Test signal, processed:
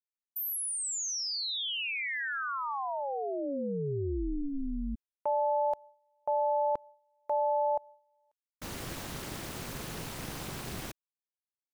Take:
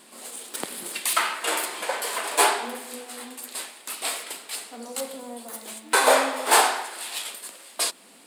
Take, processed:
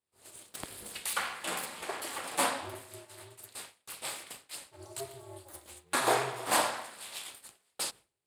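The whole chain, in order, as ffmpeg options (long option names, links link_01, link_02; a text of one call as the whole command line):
ffmpeg -i in.wav -af "equalizer=frequency=200:width=0.9:gain=2.5,agate=range=-33dB:threshold=-34dB:ratio=3:detection=peak,aeval=exprs='val(0)*sin(2*PI*140*n/s)':channel_layout=same,volume=-7dB" out.wav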